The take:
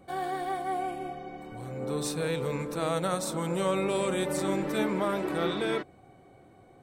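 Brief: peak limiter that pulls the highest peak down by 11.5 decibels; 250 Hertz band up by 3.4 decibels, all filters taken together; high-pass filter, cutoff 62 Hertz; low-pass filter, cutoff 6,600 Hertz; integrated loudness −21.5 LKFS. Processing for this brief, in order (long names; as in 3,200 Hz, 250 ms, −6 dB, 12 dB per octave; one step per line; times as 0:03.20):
high-pass filter 62 Hz
low-pass filter 6,600 Hz
parametric band 250 Hz +5 dB
level +13 dB
brickwall limiter −12.5 dBFS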